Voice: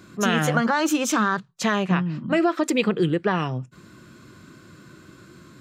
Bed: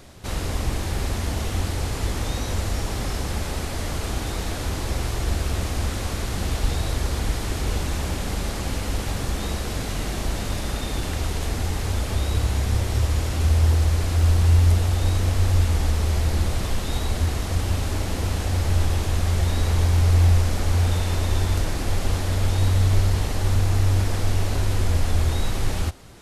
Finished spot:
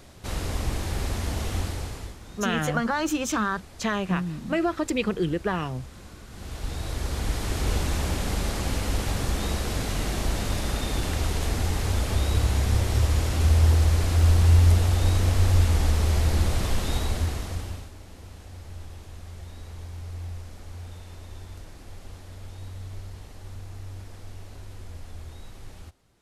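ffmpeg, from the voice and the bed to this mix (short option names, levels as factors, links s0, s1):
-filter_complex "[0:a]adelay=2200,volume=0.596[s0];[1:a]volume=5.62,afade=t=out:st=1.56:d=0.62:silence=0.16788,afade=t=in:st=6.28:d=1.42:silence=0.125893,afade=t=out:st=16.88:d=1.03:silence=0.112202[s1];[s0][s1]amix=inputs=2:normalize=0"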